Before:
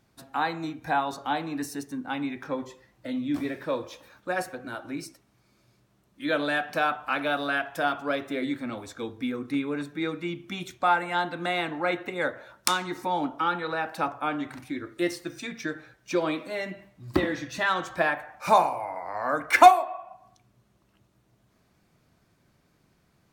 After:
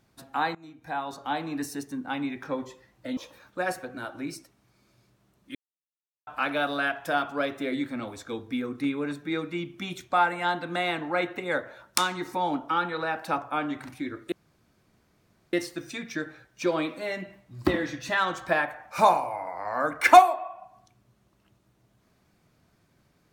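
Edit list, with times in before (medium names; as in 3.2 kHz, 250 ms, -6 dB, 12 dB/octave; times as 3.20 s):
0.55–1.51 s: fade in, from -20.5 dB
3.17–3.87 s: delete
6.25–6.97 s: mute
15.02 s: insert room tone 1.21 s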